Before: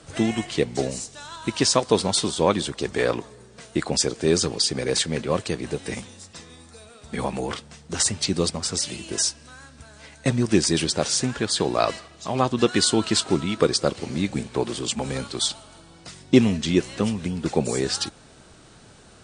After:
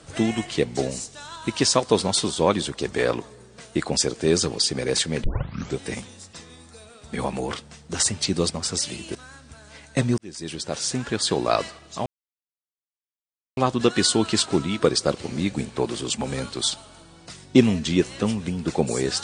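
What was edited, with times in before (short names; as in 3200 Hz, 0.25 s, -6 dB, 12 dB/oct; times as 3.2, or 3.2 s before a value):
5.24 tape start 0.55 s
9.15–9.44 cut
10.47–11.49 fade in
12.35 insert silence 1.51 s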